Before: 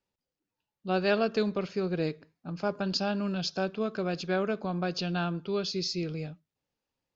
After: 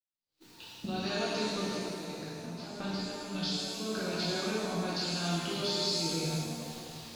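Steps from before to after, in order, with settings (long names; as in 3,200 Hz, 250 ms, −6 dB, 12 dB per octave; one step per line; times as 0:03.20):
camcorder AGC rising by 69 dB per second
mains-hum notches 50/100/150/200 Hz
downward expander −53 dBFS
graphic EQ with 15 bands 100 Hz +4 dB, 630 Hz −3 dB, 4,000 Hz +12 dB
downward compressor 5 to 1, threshold −40 dBFS, peak gain reduction 19.5 dB
0:01.47–0:03.80: square-wave tremolo 1.6 Hz, depth 65%, duty 30%
reverb with rising layers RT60 2 s, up +7 semitones, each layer −8 dB, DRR −8 dB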